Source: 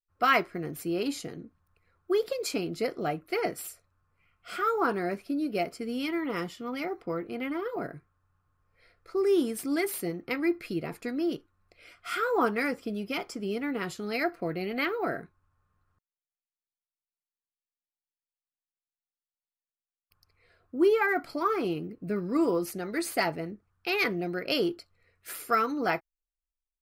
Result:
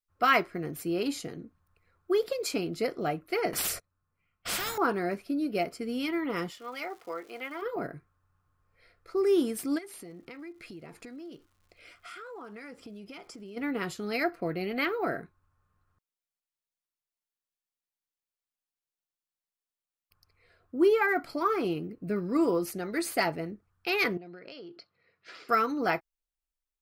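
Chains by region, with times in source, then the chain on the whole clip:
3.53–4.78 gate -60 dBFS, range -30 dB + bell 200 Hz +4.5 dB 1.5 oct + spectral compressor 4:1
6.5–7.61 HPF 570 Hz + crackle 310/s -47 dBFS
9.77–13.56 LPF 11000 Hz 24 dB/oct + compressor 5:1, threshold -43 dBFS + crackle 270/s -59 dBFS
24.17–25.49 elliptic band-pass 130–4900 Hz + compressor 10:1, threshold -42 dBFS
whole clip: dry

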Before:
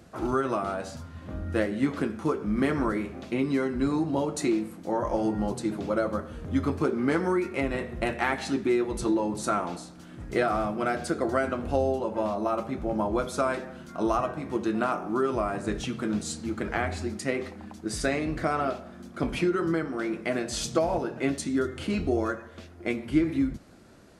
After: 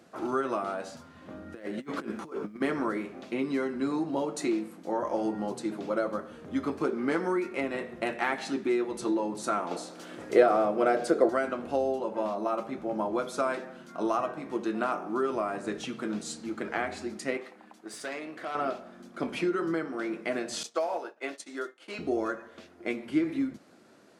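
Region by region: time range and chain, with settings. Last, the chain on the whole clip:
1.53–2.6 negative-ratio compressor -32 dBFS, ratio -0.5 + added noise pink -72 dBFS
9.71–11.29 bell 490 Hz +10.5 dB 1.1 oct + mismatched tape noise reduction encoder only
17.37–18.55 HPF 530 Hz 6 dB/oct + bell 5500 Hz -4.5 dB 1.2 oct + tube stage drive 28 dB, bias 0.4
20.63–21.99 expander -29 dBFS + HPF 520 Hz + short-mantissa float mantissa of 6-bit
whole clip: HPF 230 Hz 12 dB/oct; high shelf 8200 Hz -4.5 dB; gain -2 dB

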